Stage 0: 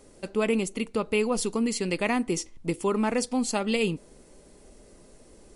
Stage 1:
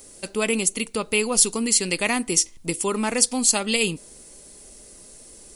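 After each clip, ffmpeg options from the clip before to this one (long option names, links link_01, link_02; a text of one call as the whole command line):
ffmpeg -i in.wav -af "crystalizer=i=5:c=0" out.wav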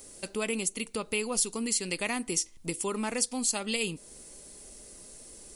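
ffmpeg -i in.wav -af "acompressor=threshold=-34dB:ratio=1.5,volume=-3dB" out.wav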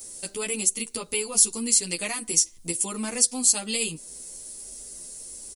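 ffmpeg -i in.wav -filter_complex "[0:a]bass=frequency=250:gain=1,treble=frequency=4000:gain=11,asplit=2[link_01][link_02];[link_02]adelay=10.6,afreqshift=1.3[link_03];[link_01][link_03]amix=inputs=2:normalize=1,volume=2dB" out.wav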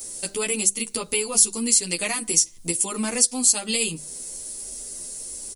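ffmpeg -i in.wav -filter_complex "[0:a]bandreject=frequency=50:width_type=h:width=6,bandreject=frequency=100:width_type=h:width=6,bandreject=frequency=150:width_type=h:width=6,bandreject=frequency=200:width_type=h:width=6,asplit=2[link_01][link_02];[link_02]acompressor=threshold=-28dB:ratio=6,volume=-1.5dB[link_03];[link_01][link_03]amix=inputs=2:normalize=0" out.wav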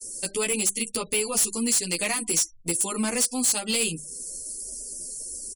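ffmpeg -i in.wav -af "afftfilt=real='re*gte(hypot(re,im),0.00794)':imag='im*gte(hypot(re,im),0.00794)':win_size=1024:overlap=0.75,asoftclip=type=hard:threshold=-18.5dB,agate=range=-33dB:threshold=-34dB:ratio=3:detection=peak" out.wav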